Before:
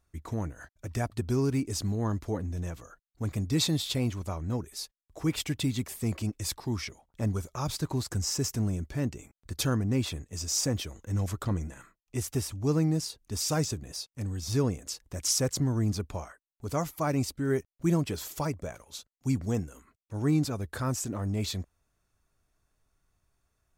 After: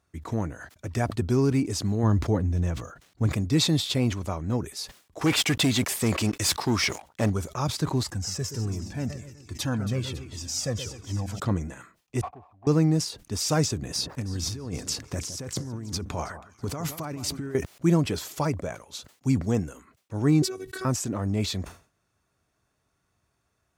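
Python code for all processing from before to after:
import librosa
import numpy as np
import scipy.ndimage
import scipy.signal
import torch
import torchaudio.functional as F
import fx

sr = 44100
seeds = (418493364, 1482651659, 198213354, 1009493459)

y = fx.chain(x, sr, fx.median_filter(points=3),
    fx.peak_eq(hz=63.0, db=8.0, octaves=2.7),
    fx.sustainer(db_per_s=100.0), at=(2.03, 3.27))
y = fx.chain(y, sr, fx.low_shelf(hz=430.0, db=-10.0),
    fx.leveller(passes=3), at=(5.21, 7.3))
y = fx.chain(y, sr, fx.echo_split(split_hz=2300.0, low_ms=125, high_ms=277, feedback_pct=52, wet_db=-11),
    fx.comb_cascade(direction='falling', hz=1.3), at=(8.03, 11.4))
y = fx.chain(y, sr, fx.formant_cascade(vowel='a'),
    fx.leveller(passes=1), at=(12.21, 12.67))
y = fx.chain(y, sr, fx.peak_eq(hz=580.0, db=-2.5, octaves=0.44),
    fx.over_compress(threshold_db=-36.0, ratio=-1.0),
    fx.echo_alternate(ms=162, hz=1500.0, feedback_pct=52, wet_db=-12.5), at=(13.79, 17.55))
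y = fx.chain(y, sr, fx.fixed_phaser(hz=330.0, stages=4),
    fx.robotise(hz=376.0),
    fx.band_squash(depth_pct=70), at=(20.42, 20.85))
y = scipy.signal.sosfilt(scipy.signal.butter(2, 92.0, 'highpass', fs=sr, output='sos'), y)
y = fx.high_shelf(y, sr, hz=9600.0, db=-9.0)
y = fx.sustainer(y, sr, db_per_s=150.0)
y = y * librosa.db_to_amplitude(5.0)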